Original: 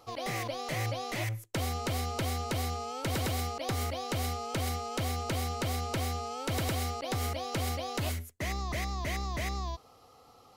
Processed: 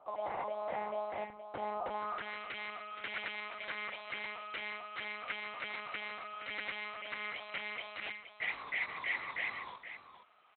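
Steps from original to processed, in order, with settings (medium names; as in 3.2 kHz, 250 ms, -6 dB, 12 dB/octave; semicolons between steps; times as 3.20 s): monotone LPC vocoder at 8 kHz 210 Hz; delay 471 ms -10.5 dB; band-pass sweep 810 Hz -> 2.1 kHz, 1.86–2.39 s; trim +4 dB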